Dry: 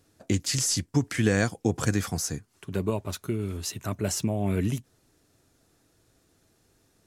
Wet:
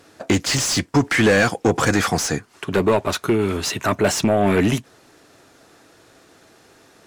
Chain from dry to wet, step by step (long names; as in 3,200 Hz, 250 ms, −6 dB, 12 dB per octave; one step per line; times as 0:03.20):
mid-hump overdrive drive 25 dB, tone 2,100 Hz, clips at −8.5 dBFS
level +3 dB